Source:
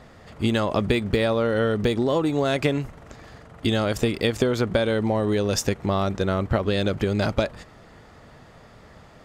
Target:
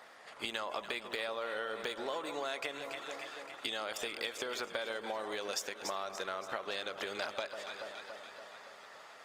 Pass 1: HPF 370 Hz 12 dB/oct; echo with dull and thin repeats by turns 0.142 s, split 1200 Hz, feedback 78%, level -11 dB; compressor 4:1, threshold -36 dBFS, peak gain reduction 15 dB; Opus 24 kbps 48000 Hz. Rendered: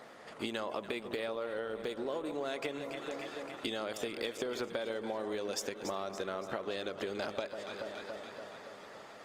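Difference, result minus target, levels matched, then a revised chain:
500 Hz band +3.0 dB
HPF 800 Hz 12 dB/oct; echo with dull and thin repeats by turns 0.142 s, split 1200 Hz, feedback 78%, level -11 dB; compressor 4:1, threshold -36 dBFS, peak gain reduction 12.5 dB; Opus 24 kbps 48000 Hz

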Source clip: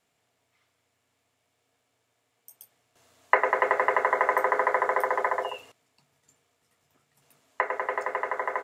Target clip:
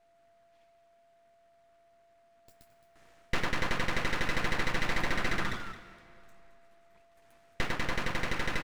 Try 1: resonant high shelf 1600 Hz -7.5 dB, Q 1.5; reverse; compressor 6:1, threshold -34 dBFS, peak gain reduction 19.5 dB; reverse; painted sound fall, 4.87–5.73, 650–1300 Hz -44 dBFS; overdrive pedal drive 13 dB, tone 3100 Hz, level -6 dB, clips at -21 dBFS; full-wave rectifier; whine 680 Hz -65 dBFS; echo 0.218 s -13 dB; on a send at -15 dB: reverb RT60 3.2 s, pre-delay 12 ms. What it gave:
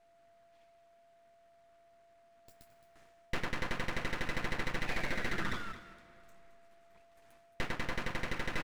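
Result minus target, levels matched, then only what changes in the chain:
compressor: peak gain reduction +9.5 dB
change: compressor 6:1, threshold -22.5 dBFS, peak gain reduction 10 dB

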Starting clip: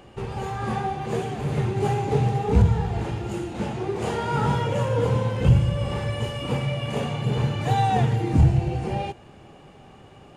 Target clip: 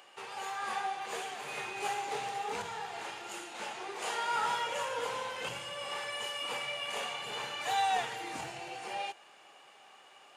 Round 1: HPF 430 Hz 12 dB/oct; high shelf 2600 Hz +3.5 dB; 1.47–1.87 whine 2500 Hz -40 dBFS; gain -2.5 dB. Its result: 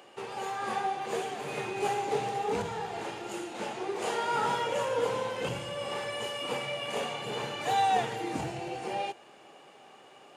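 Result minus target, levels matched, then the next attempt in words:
500 Hz band +5.5 dB
HPF 920 Hz 12 dB/oct; high shelf 2600 Hz +3.5 dB; 1.47–1.87 whine 2500 Hz -40 dBFS; gain -2.5 dB

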